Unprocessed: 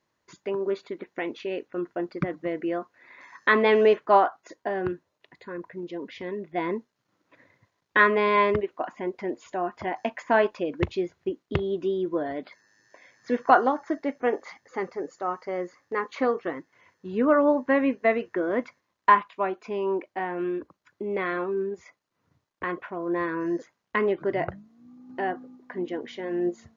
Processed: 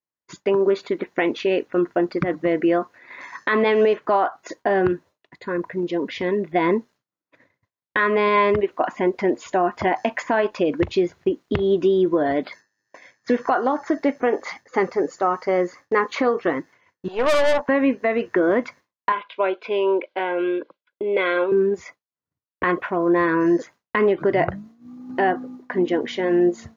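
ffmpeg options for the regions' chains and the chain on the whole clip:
-filter_complex "[0:a]asettb=1/sr,asplit=3[s0][s1][s2];[s0]atrim=end=17.084[s3];[s1]atrim=start=17.08:end=17.69,asetpts=PTS-STARTPTS,afade=t=in:d=0.004:c=qsin,afade=t=out:st=0.606:d=0.004:c=qsin,highpass=f=700:t=q:w=4.4,aeval=exprs='(tanh(17.8*val(0)+0.7)-tanh(0.7))/17.8':c=same[s4];[s2]atrim=start=17.686[s5];[s3][s4]acrossfade=d=0.004:c1=hsin:c2=qsin[s6];[s6][s5]acrossfade=d=0.004:c1=qsin:c2=hsin,asettb=1/sr,asplit=3[s7][s8][s9];[s7]atrim=end=19.124[s10];[s8]atrim=start=19.12:end=21.52,asetpts=PTS-STARTPTS,afade=t=in:d=0.004:c=qsin,afade=t=out:st=2.396:d=0.004:c=qsin,asuperstop=centerf=1800:order=4:qfactor=5.5,highpass=450,equalizer=f=520:t=q:w=4:g=6,equalizer=f=760:t=q:w=4:g=-8,equalizer=f=1200:t=q:w=4:g=-10,equalizer=f=1700:t=q:w=4:g=5,equalizer=f=3400:t=q:w=4:g=6,lowpass=f=4100:w=0.5412,lowpass=f=4100:w=1.3066[s11];[s9]atrim=start=21.516[s12];[s10][s11]acrossfade=d=0.004:c1=hsin:c2=qsin[s13];[s13][s12]acrossfade=d=0.004:c1=qsin:c2=hsin,agate=range=0.0224:threshold=0.00398:ratio=3:detection=peak,acompressor=threshold=0.0631:ratio=10,alimiter=level_in=9.44:limit=0.891:release=50:level=0:latency=1,volume=0.376"

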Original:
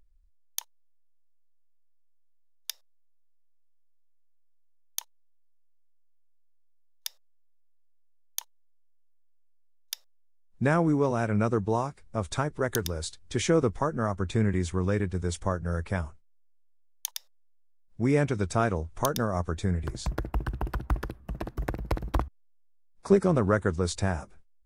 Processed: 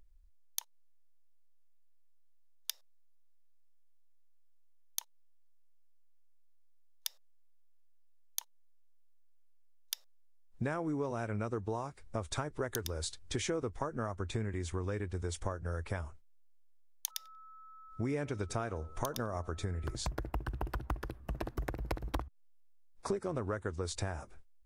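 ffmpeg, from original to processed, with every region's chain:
-filter_complex "[0:a]asettb=1/sr,asplit=3[s0][s1][s2];[s0]atrim=end=17.104[s3];[s1]atrim=start=17.1:end=19.95,asetpts=PTS-STARTPTS,afade=t=in:d=0.004:c=qsin,afade=t=out:st=2.846:d=0.004:c=qsin,bandreject=f=7900:w=23,asplit=2[s4][s5];[s5]adelay=93,lowpass=f=1400:p=1,volume=0.0891,asplit=2[s6][s7];[s7]adelay=93,lowpass=f=1400:p=1,volume=0.29[s8];[s4][s6][s8]amix=inputs=3:normalize=0,atrim=end_sample=125685,aeval=exprs='val(0)+0.00224*sin(2*PI*1300*n/s)':c=same[s9];[s2]atrim=start=19.946[s10];[s3][s9]acrossfade=d=0.004:c1=hsin:c2=qsin[s11];[s11][s10]acrossfade=d=0.004:c1=qsin:c2=hsin,equalizer=f=180:w=3.6:g=-9.5,acompressor=threshold=0.02:ratio=6,volume=1.12"

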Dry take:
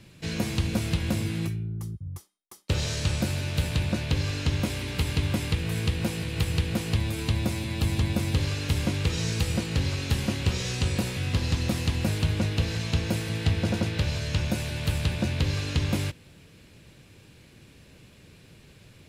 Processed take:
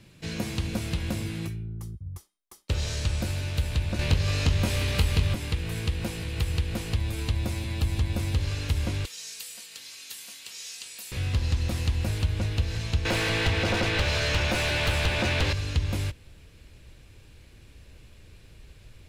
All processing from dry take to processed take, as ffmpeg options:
-filter_complex "[0:a]asettb=1/sr,asplit=3[s0][s1][s2];[s0]atrim=end=3.994[s3];[s1]atrim=start=3.99:end=5.34,asetpts=PTS-STARTPTS,afade=t=in:d=0.004:c=qsin,afade=t=out:st=1.346:d=0.004:c=qsin,acontrast=84,asplit=2[s4][s5];[s5]adelay=22,volume=0.631[s6];[s4][s6]amix=inputs=2:normalize=0,atrim=end_sample=59535[s7];[s2]atrim=start=5.336[s8];[s3][s7]acrossfade=d=0.004:c1=hsin:c2=qsin[s9];[s9][s8]acrossfade=d=0.004:c1=qsin:c2=hsin,asettb=1/sr,asplit=3[s10][s11][s12];[s10]atrim=end=9.054[s13];[s11]atrim=start=9.05:end=11.12,asetpts=PTS-STARTPTS,afade=t=in:d=0.004:c=qsin,afade=t=out:st=2.066:d=0.004:c=qsin,highpass=f=120:w=0.5412,highpass=f=120:w=1.3066,aderivative,aecho=1:1:4.4:0.4,atrim=end_sample=91287[s14];[s12]atrim=start=11.116[s15];[s13][s14]acrossfade=d=0.004:c1=hsin:c2=qsin[s16];[s16][s15]acrossfade=d=0.004:c1=qsin:c2=hsin,asettb=1/sr,asplit=3[s17][s18][s19];[s17]atrim=end=13.054[s20];[s18]atrim=start=13.05:end=15.53,asetpts=PTS-STARTPTS,afade=t=in:d=0.004:c=qsin,afade=t=out:st=2.476:d=0.004:c=qsin,highpass=48,highshelf=f=6100:g=-2,asplit=2[s21][s22];[s22]highpass=f=720:p=1,volume=20,asoftclip=type=tanh:threshold=0.299[s23];[s21][s23]amix=inputs=2:normalize=0,lowpass=f=2800:p=1,volume=0.501[s24];[s19]atrim=start=15.526[s25];[s20][s24]acrossfade=d=0.004:c1=hsin:c2=qsin[s26];[s26][s25]acrossfade=d=0.004:c1=qsin:c2=hsin,asubboost=boost=8:cutoff=56,acompressor=threshold=0.0891:ratio=2,volume=0.794"

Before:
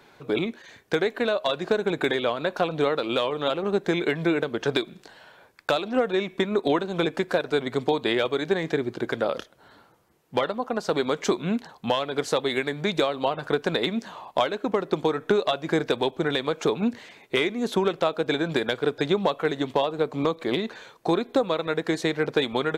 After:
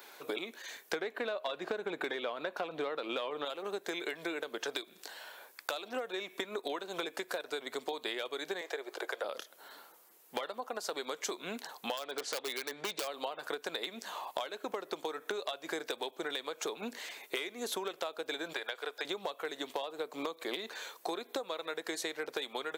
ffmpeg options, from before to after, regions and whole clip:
-filter_complex "[0:a]asettb=1/sr,asplit=3[s0][s1][s2];[s0]atrim=end=0.934[s3];[s1]atrim=start=0.93:end=3.45,asetpts=PTS-STARTPTS,afade=t=in:d=0.004:c=qsin,afade=t=out:st=2.516:d=0.004:c=qsin,bass=f=250:g=7,treble=f=4000:g=-12,acontrast=85[s4];[s2]atrim=start=3.446[s5];[s3][s4]acrossfade=d=0.004:c1=hsin:c2=qsin[s6];[s6][s5]acrossfade=d=0.004:c1=qsin:c2=hsin,asettb=1/sr,asplit=3[s7][s8][s9];[s7]atrim=end=8.614[s10];[s8]atrim=start=8.61:end=9.24,asetpts=PTS-STARTPTS,afade=t=in:d=0.004:c=qsin,afade=t=out:st=0.626:d=0.004:c=qsin,highpass=f=470:w=0.5412,highpass=f=470:w=1.3066,tiltshelf=f=1400:g=4[s11];[s9]atrim=start=9.236[s12];[s10][s11]acrossfade=d=0.004:c1=hsin:c2=qsin[s13];[s13][s12]acrossfade=d=0.004:c1=qsin:c2=hsin,asettb=1/sr,asplit=3[s14][s15][s16];[s14]atrim=end=11.974[s17];[s15]atrim=start=11.97:end=13.08,asetpts=PTS-STARTPTS,afade=t=in:d=0.004:c=qsin,afade=t=out:st=1.106:d=0.004:c=qsin,lowpass=4800,aeval=exprs='0.112*(abs(mod(val(0)/0.112+3,4)-2)-1)':c=same[s18];[s16]atrim=start=13.076[s19];[s17][s18]acrossfade=d=0.004:c1=hsin:c2=qsin[s20];[s20][s19]acrossfade=d=0.004:c1=qsin:c2=hsin,asettb=1/sr,asplit=3[s21][s22][s23];[s21]atrim=end=18.534[s24];[s22]atrim=start=18.53:end=19.05,asetpts=PTS-STARTPTS,afade=t=in:d=0.004:c=qsin,afade=t=out:st=0.516:d=0.004:c=qsin,highpass=570,acrossover=split=3900[s25][s26];[s26]acompressor=threshold=0.00316:ratio=4:attack=1:release=60[s27];[s25][s27]amix=inputs=2:normalize=0[s28];[s23]atrim=start=19.046[s29];[s24][s28]acrossfade=d=0.004:c1=hsin:c2=qsin[s30];[s30][s29]acrossfade=d=0.004:c1=qsin:c2=hsin,highpass=330,aemphasis=mode=production:type=bsi,acompressor=threshold=0.0178:ratio=6"

